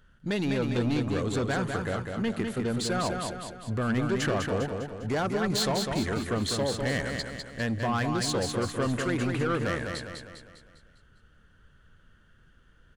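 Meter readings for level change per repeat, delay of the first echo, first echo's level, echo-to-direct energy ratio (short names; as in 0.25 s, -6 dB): -6.0 dB, 0.201 s, -5.0 dB, -4.0 dB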